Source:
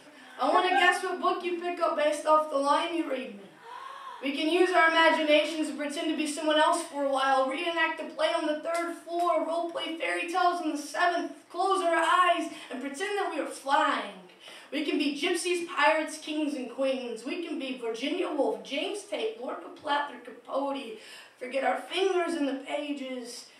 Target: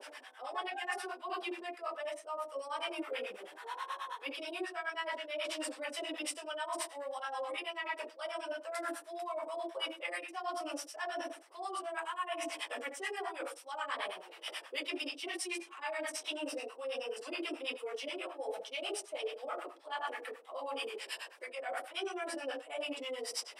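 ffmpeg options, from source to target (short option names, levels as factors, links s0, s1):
-filter_complex "[0:a]highpass=f=420:w=0.5412,highpass=f=420:w=1.3066,areverse,acompressor=threshold=0.0112:ratio=16,areverse,acrossover=split=680[s0][s1];[s0]aeval=exprs='val(0)*(1-1/2+1/2*cos(2*PI*9.3*n/s))':c=same[s2];[s1]aeval=exprs='val(0)*(1-1/2-1/2*cos(2*PI*9.3*n/s))':c=same[s3];[s2][s3]amix=inputs=2:normalize=0,volume=2.51"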